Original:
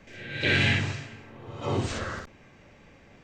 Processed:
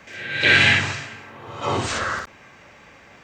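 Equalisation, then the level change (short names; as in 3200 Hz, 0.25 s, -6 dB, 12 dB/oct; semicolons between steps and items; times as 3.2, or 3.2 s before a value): HPF 44 Hz; bell 1200 Hz +10.5 dB 2.2 oct; high shelf 3500 Hz +11.5 dB; 0.0 dB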